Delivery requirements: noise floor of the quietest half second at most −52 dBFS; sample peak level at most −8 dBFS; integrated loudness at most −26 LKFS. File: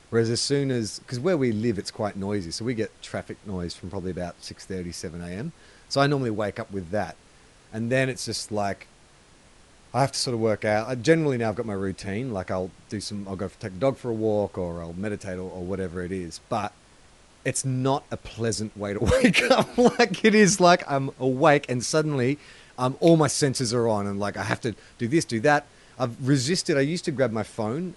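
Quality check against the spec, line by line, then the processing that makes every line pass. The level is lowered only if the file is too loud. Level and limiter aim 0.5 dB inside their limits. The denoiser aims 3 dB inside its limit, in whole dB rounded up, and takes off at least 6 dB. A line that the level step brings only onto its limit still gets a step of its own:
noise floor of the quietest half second −54 dBFS: in spec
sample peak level −5.0 dBFS: out of spec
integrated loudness −25.0 LKFS: out of spec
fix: level −1.5 dB
brickwall limiter −8.5 dBFS

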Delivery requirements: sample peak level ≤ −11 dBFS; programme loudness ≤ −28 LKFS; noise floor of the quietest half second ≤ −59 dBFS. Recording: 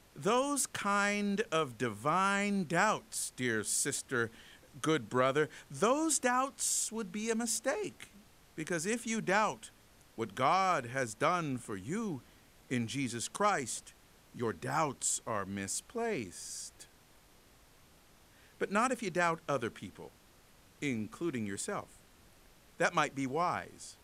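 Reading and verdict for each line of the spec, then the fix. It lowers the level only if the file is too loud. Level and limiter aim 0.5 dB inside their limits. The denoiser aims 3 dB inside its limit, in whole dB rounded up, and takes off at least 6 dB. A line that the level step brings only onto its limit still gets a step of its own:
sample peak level −15.0 dBFS: in spec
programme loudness −33.5 LKFS: in spec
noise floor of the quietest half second −62 dBFS: in spec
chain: no processing needed

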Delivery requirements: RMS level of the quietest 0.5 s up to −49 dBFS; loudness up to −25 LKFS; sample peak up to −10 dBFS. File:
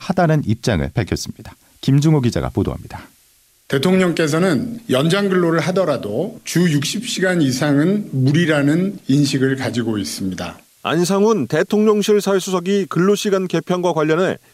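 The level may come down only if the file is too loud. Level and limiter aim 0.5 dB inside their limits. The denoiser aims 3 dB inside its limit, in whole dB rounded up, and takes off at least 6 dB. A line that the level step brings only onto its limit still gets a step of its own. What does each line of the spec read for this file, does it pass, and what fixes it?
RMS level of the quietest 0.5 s −55 dBFS: in spec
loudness −17.5 LKFS: out of spec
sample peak −5.0 dBFS: out of spec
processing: level −8 dB

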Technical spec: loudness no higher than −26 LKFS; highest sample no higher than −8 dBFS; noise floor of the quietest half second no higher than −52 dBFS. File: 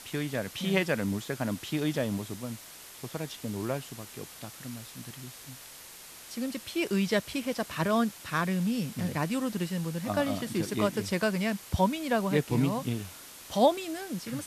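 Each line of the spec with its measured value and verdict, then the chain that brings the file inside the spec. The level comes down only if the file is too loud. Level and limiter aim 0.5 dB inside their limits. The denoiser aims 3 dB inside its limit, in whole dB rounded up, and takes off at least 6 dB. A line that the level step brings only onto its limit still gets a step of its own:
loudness −30.5 LKFS: in spec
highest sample −11.0 dBFS: in spec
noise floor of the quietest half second −48 dBFS: out of spec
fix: broadband denoise 7 dB, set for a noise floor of −48 dBFS

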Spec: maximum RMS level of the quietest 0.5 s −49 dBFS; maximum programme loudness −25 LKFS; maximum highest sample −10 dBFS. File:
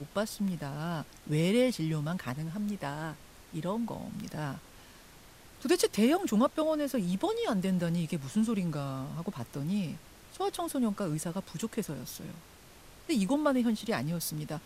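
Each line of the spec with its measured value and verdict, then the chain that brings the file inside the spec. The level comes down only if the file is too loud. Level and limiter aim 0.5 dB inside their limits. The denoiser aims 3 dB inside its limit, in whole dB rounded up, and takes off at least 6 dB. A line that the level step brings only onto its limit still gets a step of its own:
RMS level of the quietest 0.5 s −54 dBFS: in spec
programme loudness −32.0 LKFS: in spec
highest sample −14.0 dBFS: in spec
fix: no processing needed

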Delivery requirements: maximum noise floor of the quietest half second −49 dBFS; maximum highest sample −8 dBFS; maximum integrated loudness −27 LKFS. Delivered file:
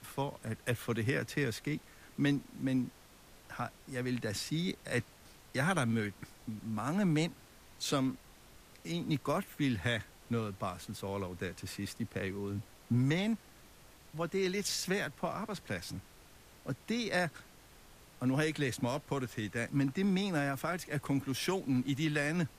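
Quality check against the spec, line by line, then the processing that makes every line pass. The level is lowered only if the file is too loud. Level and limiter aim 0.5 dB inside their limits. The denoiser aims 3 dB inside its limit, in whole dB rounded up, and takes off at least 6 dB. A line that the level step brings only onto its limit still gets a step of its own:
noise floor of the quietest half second −58 dBFS: in spec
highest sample −17.5 dBFS: in spec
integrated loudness −35.5 LKFS: in spec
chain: no processing needed

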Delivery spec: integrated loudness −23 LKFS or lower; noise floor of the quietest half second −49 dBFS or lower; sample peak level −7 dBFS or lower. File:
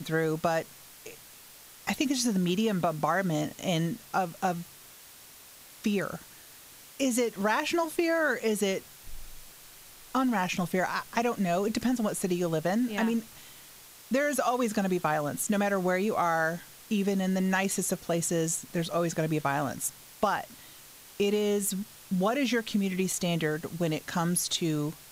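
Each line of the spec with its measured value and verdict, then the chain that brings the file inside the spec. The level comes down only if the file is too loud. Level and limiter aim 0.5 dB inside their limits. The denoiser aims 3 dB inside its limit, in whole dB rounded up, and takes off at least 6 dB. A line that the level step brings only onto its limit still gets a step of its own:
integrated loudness −29.0 LKFS: in spec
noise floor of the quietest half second −51 dBFS: in spec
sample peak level −12.0 dBFS: in spec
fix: no processing needed

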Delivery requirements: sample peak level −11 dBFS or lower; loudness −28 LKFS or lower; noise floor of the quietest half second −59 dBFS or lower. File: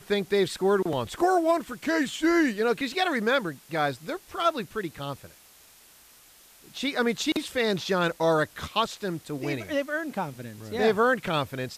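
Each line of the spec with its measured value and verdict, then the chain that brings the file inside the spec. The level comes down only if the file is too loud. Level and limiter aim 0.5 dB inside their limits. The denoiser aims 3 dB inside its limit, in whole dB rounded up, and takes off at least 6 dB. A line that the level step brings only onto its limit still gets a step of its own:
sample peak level −9.5 dBFS: out of spec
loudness −26.5 LKFS: out of spec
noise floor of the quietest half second −55 dBFS: out of spec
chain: broadband denoise 6 dB, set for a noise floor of −55 dBFS
level −2 dB

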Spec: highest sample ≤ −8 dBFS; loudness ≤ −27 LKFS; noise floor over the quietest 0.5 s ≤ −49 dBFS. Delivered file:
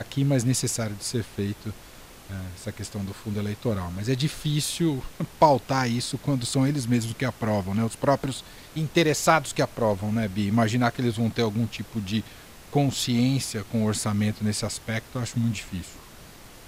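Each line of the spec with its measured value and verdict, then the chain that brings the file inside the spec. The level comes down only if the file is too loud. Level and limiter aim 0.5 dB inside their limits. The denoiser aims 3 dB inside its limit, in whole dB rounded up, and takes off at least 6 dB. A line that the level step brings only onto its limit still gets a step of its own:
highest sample −6.0 dBFS: out of spec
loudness −26.0 LKFS: out of spec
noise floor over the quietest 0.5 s −46 dBFS: out of spec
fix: broadband denoise 6 dB, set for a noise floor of −46 dBFS
level −1.5 dB
brickwall limiter −8.5 dBFS

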